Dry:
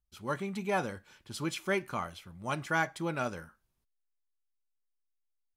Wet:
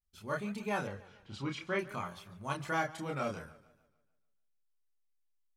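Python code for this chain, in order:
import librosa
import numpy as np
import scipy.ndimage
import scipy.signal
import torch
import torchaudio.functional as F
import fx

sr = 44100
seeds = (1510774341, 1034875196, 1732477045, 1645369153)

y = fx.vibrato(x, sr, rate_hz=0.55, depth_cents=87.0)
y = fx.chorus_voices(y, sr, voices=4, hz=0.38, base_ms=29, depth_ms=1.1, mix_pct=45)
y = fx.lowpass(y, sr, hz=4100.0, slope=12, at=(0.87, 1.79))
y = fx.echo_warbled(y, sr, ms=147, feedback_pct=45, rate_hz=2.8, cents=110, wet_db=-19)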